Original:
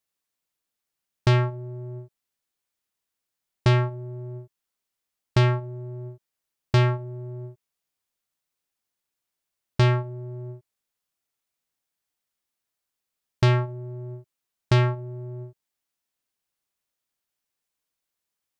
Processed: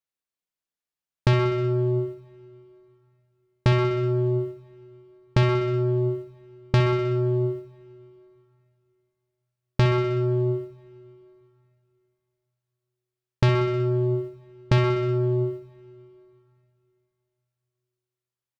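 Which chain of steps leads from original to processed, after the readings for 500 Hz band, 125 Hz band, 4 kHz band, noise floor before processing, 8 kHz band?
+7.0 dB, +1.0 dB, -0.5 dB, -85 dBFS, no reading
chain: rattle on loud lows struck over -22 dBFS, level -33 dBFS; gate with hold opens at -39 dBFS; on a send: feedback delay 62 ms, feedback 52%, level -8 dB; on the sum: compression 4:1, threshold -32 dBFS, peak gain reduction 13 dB; treble shelf 5.9 kHz -5.5 dB; plate-style reverb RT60 3.2 s, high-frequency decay 0.9×, DRR 20 dB; in parallel at -1 dB: peak limiter -29 dBFS, peak gain reduction 9 dB; on the sum: trim +8 dB

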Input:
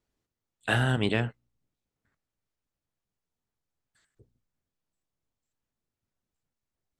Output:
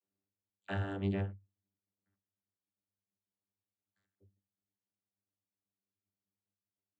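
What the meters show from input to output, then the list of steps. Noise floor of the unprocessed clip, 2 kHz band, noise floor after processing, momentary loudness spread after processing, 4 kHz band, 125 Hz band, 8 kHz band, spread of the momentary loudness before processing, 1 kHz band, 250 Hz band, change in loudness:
under -85 dBFS, -16.0 dB, under -85 dBFS, 21 LU, -19.0 dB, -9.0 dB, under -25 dB, 11 LU, -12.0 dB, -7.0 dB, -9.5 dB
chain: vocoder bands 32, saw 98.2 Hz; trim -8 dB

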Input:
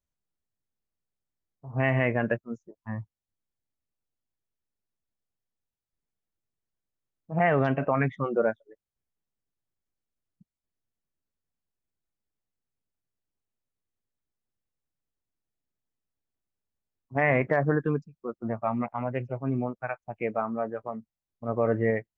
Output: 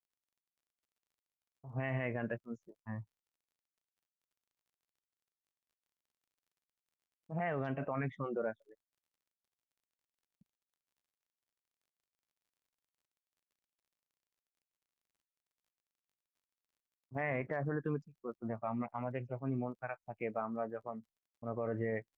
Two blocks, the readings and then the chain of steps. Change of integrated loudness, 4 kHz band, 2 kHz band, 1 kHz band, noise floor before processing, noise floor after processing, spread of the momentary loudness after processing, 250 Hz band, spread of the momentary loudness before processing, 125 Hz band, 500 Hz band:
-11.5 dB, no reading, -12.5 dB, -11.5 dB, under -85 dBFS, under -85 dBFS, 11 LU, -10.0 dB, 14 LU, -10.5 dB, -11.5 dB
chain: expander -54 dBFS; peak limiter -18.5 dBFS, peak gain reduction 6.5 dB; crackle 42 per s -59 dBFS; trim -8 dB

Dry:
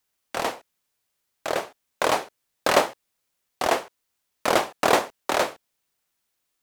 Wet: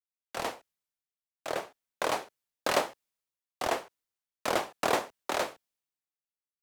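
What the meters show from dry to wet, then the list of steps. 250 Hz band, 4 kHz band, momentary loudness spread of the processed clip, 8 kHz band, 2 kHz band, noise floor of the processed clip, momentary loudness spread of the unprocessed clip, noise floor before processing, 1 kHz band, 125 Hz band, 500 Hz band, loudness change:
-8.0 dB, -7.5 dB, 12 LU, -7.0 dB, -8.0 dB, under -85 dBFS, 12 LU, -77 dBFS, -8.0 dB, -7.0 dB, -8.0 dB, -8.0 dB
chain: compression 2:1, threshold -25 dBFS, peak gain reduction 7 dB; three bands expanded up and down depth 70%; trim -4.5 dB

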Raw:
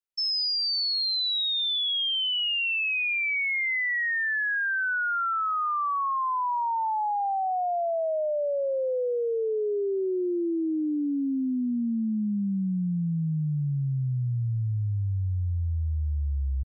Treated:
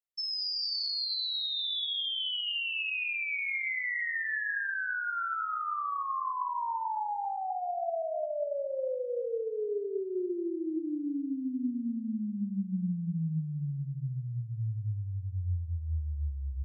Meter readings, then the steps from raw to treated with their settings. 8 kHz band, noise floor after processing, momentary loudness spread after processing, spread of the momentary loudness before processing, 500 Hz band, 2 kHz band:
no reading, -38 dBFS, 6 LU, 5 LU, -6.0 dB, -6.0 dB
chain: gated-style reverb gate 450 ms flat, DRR 4.5 dB; trim -7.5 dB

